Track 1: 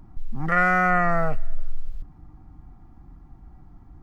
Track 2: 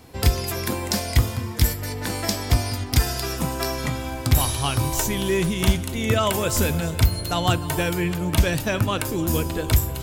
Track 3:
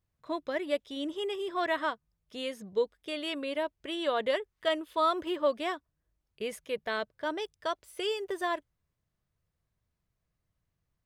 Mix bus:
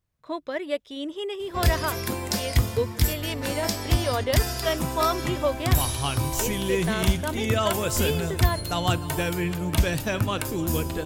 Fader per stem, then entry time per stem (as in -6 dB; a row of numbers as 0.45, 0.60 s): off, -3.0 dB, +2.5 dB; off, 1.40 s, 0.00 s